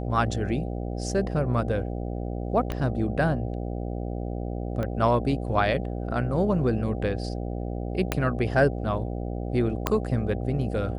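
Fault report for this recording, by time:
buzz 60 Hz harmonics 13 -31 dBFS
2.72 pop -16 dBFS
4.83 pop -18 dBFS
8.12 pop -9 dBFS
9.87 pop -8 dBFS

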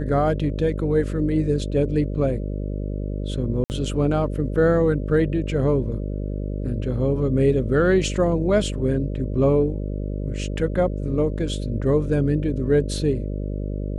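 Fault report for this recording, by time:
buzz 50 Hz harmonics 12 -27 dBFS
3.64–3.7 gap 59 ms

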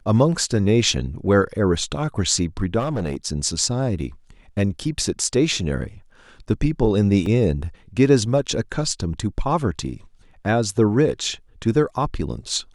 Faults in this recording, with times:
2.79–3.17 clipped -19.5 dBFS
7.26 gap 2.4 ms

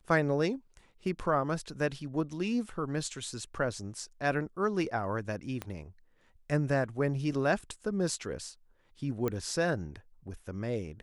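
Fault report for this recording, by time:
5.62 pop -21 dBFS
9.28 pop -19 dBFS

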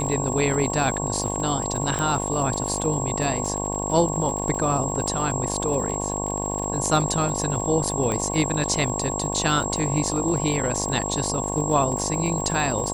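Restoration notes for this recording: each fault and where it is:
buzz 50 Hz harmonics 22 -29 dBFS
crackle 79/s -30 dBFS
tone 7600 Hz -29 dBFS
1.99 pop -13 dBFS
8.12 pop -13 dBFS

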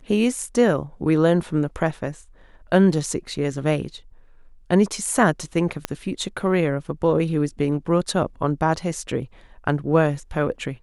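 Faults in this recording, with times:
5.85 pop -9 dBFS

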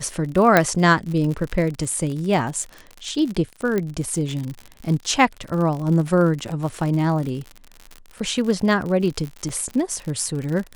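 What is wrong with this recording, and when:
crackle 65/s -27 dBFS
0.57 pop -1 dBFS
3.78 pop -11 dBFS
9.49 gap 4.7 ms

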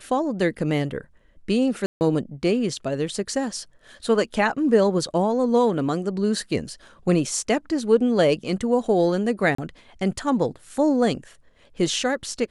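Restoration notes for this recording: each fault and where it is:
1.86–2.01 gap 0.149 s
9.55–9.58 gap 34 ms

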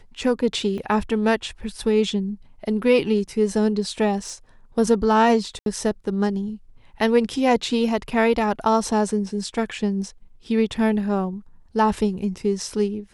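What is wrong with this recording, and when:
0.78 gap 2.8 ms
4.18–4.32 clipped -26 dBFS
5.59–5.66 gap 72 ms

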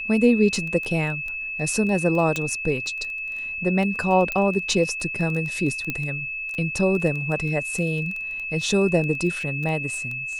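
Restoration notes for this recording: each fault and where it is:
crackle 10/s -27 dBFS
tone 2600 Hz -28 dBFS
2.36 pop -11 dBFS
4.32 pop -12 dBFS
5.9 pop -12 dBFS

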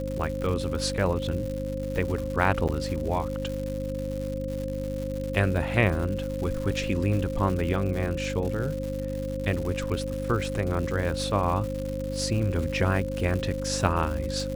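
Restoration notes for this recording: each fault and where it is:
crackle 200/s -32 dBFS
hum 50 Hz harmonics 6 -33 dBFS
tone 530 Hz -32 dBFS
2.68–2.69 gap 7.3 ms

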